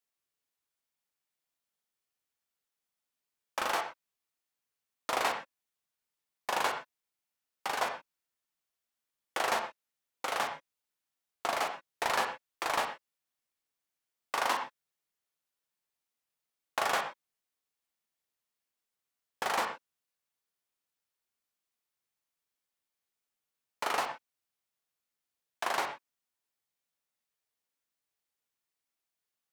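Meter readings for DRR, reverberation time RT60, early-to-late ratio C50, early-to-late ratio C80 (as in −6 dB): 4.0 dB, non-exponential decay, 7.5 dB, 10.5 dB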